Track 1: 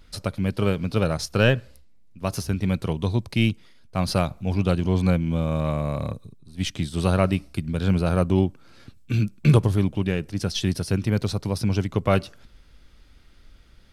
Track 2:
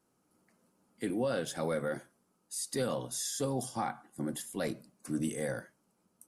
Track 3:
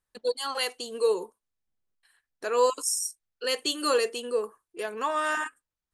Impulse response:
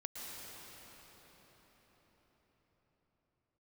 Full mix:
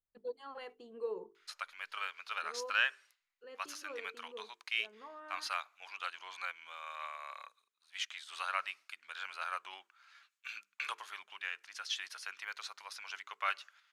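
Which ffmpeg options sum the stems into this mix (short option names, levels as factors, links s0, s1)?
-filter_complex "[0:a]highpass=f=1200:w=0.5412,highpass=f=1200:w=1.3066,equalizer=f=6700:w=5:g=8,adelay=1350,volume=0.708[s0];[2:a]lowpass=f=1500:p=1,volume=0.224,afade=t=out:st=1.97:d=0.26:silence=0.398107[s1];[s0][s1]amix=inputs=2:normalize=0,bass=f=250:g=4,treble=f=4000:g=-14,bandreject=f=50:t=h:w=6,bandreject=f=100:t=h:w=6,bandreject=f=150:t=h:w=6,bandreject=f=200:t=h:w=6,bandreject=f=250:t=h:w=6,bandreject=f=300:t=h:w=6,bandreject=f=350:t=h:w=6,bandreject=f=400:t=h:w=6,bandreject=f=450:t=h:w=6"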